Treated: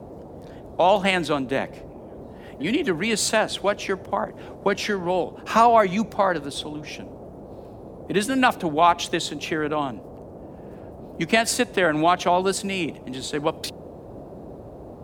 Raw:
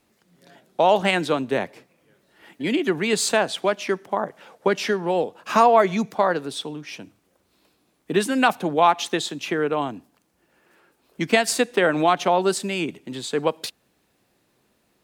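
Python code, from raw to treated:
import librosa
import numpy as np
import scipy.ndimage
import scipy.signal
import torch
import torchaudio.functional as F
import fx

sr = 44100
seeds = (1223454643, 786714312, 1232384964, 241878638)

y = fx.peak_eq(x, sr, hz=440.0, db=-5.0, octaves=0.34)
y = fx.dmg_noise_band(y, sr, seeds[0], low_hz=42.0, high_hz=640.0, level_db=-40.0)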